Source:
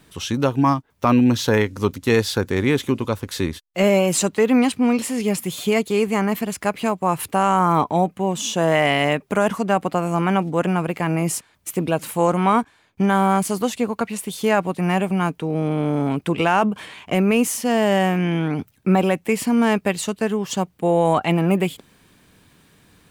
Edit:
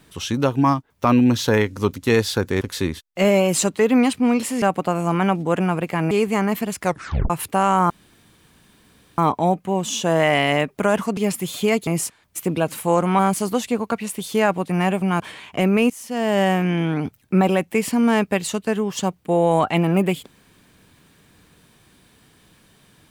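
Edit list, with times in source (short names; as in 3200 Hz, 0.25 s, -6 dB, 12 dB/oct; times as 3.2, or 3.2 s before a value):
2.61–3.2 cut
5.21–5.91 swap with 9.69–11.18
6.63 tape stop 0.47 s
7.7 insert room tone 1.28 s
12.5–13.28 cut
15.29–16.74 cut
17.44–17.95 fade in, from -20 dB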